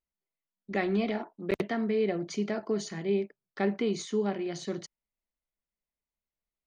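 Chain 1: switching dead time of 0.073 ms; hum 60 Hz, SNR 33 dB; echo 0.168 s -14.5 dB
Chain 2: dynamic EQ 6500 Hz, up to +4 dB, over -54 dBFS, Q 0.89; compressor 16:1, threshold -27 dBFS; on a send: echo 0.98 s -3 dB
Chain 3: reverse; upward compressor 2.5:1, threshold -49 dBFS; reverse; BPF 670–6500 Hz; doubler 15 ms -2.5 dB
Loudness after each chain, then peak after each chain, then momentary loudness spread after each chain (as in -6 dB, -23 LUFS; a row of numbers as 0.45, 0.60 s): -31.5, -33.5, -37.5 LUFS; -15.0, -17.5, -17.5 dBFS; 8, 7, 7 LU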